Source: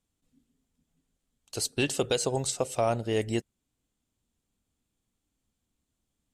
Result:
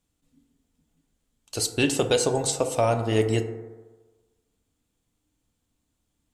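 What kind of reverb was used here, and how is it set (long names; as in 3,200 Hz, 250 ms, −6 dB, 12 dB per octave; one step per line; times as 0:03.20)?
feedback delay network reverb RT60 1.3 s, low-frequency decay 0.8×, high-frequency decay 0.3×, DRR 6 dB
level +4 dB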